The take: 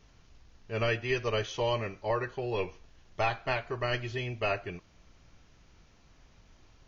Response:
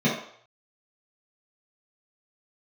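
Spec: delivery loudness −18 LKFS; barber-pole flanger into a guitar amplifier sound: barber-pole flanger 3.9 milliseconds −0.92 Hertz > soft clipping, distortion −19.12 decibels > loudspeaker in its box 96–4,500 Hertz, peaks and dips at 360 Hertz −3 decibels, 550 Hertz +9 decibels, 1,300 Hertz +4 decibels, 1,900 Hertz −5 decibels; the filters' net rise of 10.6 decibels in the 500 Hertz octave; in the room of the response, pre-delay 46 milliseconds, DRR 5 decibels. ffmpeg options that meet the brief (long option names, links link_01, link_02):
-filter_complex "[0:a]equalizer=frequency=500:width_type=o:gain=7,asplit=2[link_01][link_02];[1:a]atrim=start_sample=2205,adelay=46[link_03];[link_02][link_03]afir=irnorm=-1:irlink=0,volume=-20dB[link_04];[link_01][link_04]amix=inputs=2:normalize=0,asplit=2[link_05][link_06];[link_06]adelay=3.9,afreqshift=-0.92[link_07];[link_05][link_07]amix=inputs=2:normalize=1,asoftclip=threshold=-19dB,highpass=96,equalizer=frequency=360:width_type=q:width=4:gain=-3,equalizer=frequency=550:width_type=q:width=4:gain=9,equalizer=frequency=1300:width_type=q:width=4:gain=4,equalizer=frequency=1900:width_type=q:width=4:gain=-5,lowpass=frequency=4500:width=0.5412,lowpass=frequency=4500:width=1.3066,volume=8.5dB"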